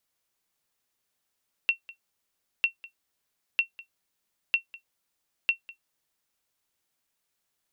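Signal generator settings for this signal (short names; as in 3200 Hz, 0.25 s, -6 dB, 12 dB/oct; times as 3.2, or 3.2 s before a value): sonar ping 2720 Hz, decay 0.11 s, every 0.95 s, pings 5, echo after 0.20 s, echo -20.5 dB -13.5 dBFS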